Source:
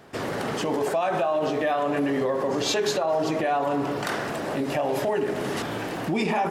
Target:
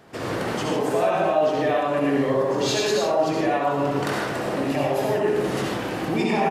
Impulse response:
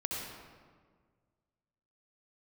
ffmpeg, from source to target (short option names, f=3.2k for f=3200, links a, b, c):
-filter_complex "[1:a]atrim=start_sample=2205,afade=t=out:st=0.23:d=0.01,atrim=end_sample=10584[a];[0:a][a]afir=irnorm=-1:irlink=0,aresample=32000,aresample=44100"